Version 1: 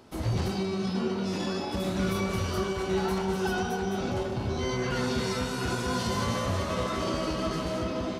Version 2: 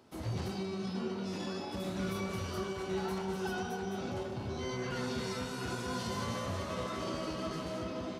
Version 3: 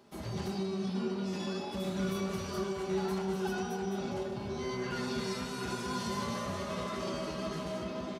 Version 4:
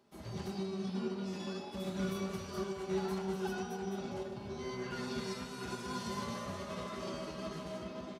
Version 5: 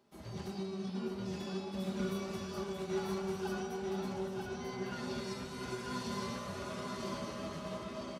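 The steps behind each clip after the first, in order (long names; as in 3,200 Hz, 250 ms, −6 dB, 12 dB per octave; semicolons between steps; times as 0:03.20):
high-pass filter 74 Hz; level −7.5 dB
comb filter 5 ms, depth 49%
expander for the loud parts 1.5 to 1, over −44 dBFS; level −1.5 dB
single-tap delay 941 ms −3.5 dB; level −1.5 dB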